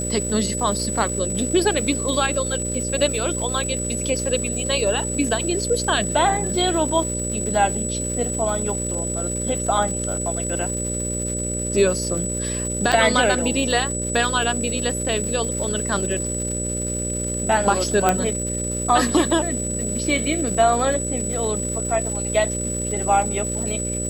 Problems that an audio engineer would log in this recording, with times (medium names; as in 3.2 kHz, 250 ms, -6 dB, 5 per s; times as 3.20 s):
buzz 60 Hz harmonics 10 -28 dBFS
crackle 340 per s -30 dBFS
whine 7.9 kHz -26 dBFS
12.92–12.93 s: dropout 6.5 ms
18.09 s: pop -4 dBFS